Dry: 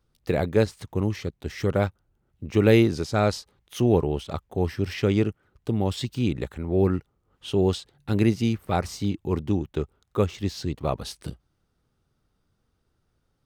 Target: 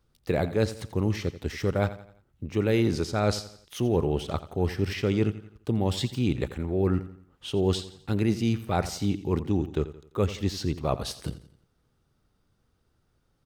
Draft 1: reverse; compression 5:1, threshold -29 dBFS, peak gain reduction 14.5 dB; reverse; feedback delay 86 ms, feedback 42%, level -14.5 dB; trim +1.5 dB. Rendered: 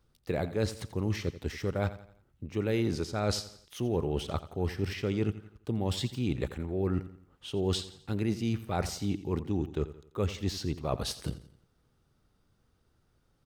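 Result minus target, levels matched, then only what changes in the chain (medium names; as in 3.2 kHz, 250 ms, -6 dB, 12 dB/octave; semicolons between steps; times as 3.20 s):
compression: peak gain reduction +5.5 dB
change: compression 5:1, threshold -22 dBFS, peak gain reduction 9 dB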